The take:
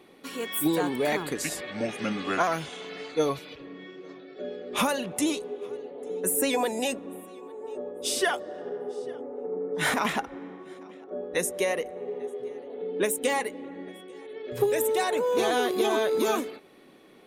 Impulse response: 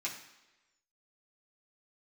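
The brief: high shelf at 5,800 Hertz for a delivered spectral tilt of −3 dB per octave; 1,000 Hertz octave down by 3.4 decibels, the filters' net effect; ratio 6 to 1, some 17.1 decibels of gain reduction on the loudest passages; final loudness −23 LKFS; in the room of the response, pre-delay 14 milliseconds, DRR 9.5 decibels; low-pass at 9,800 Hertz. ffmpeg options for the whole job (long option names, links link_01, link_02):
-filter_complex "[0:a]lowpass=9800,equalizer=frequency=1000:width_type=o:gain=-5,highshelf=frequency=5800:gain=6,acompressor=threshold=-40dB:ratio=6,asplit=2[link_01][link_02];[1:a]atrim=start_sample=2205,adelay=14[link_03];[link_02][link_03]afir=irnorm=-1:irlink=0,volume=-12dB[link_04];[link_01][link_04]amix=inputs=2:normalize=0,volume=19dB"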